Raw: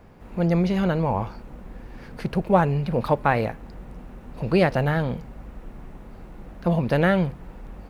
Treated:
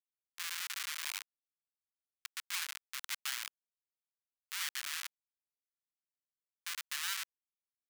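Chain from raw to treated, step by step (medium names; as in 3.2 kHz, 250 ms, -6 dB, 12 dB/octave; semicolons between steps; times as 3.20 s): Schmitt trigger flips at -19 dBFS; Bessel high-pass 2.2 kHz, order 8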